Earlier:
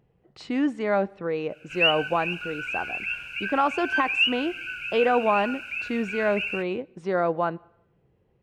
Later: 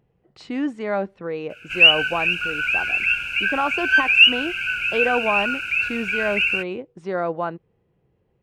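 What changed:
background +10.5 dB
reverb: off

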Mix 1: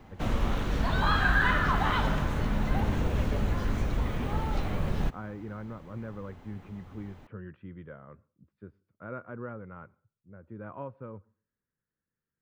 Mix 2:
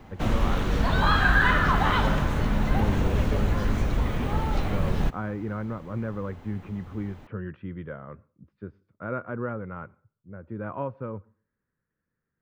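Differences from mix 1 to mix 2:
speech +8.0 dB
background +4.0 dB

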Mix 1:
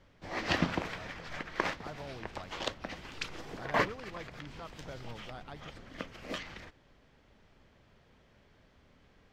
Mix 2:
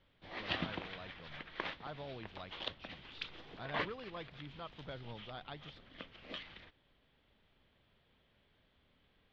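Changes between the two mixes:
speech +8.5 dB
master: add transistor ladder low-pass 4,000 Hz, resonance 55%

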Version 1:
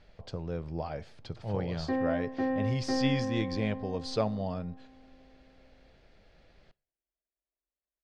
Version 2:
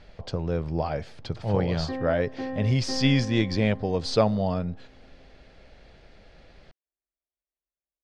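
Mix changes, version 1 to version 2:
speech +9.0 dB
reverb: off

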